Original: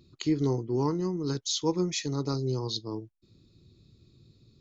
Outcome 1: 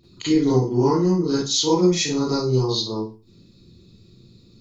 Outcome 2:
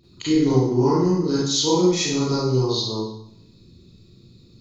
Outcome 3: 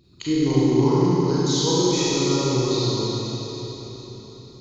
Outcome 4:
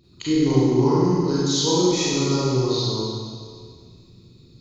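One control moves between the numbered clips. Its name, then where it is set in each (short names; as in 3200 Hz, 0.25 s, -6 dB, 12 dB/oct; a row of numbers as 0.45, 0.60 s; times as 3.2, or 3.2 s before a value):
Schroeder reverb, RT60: 0.34, 0.75, 4.2, 2 s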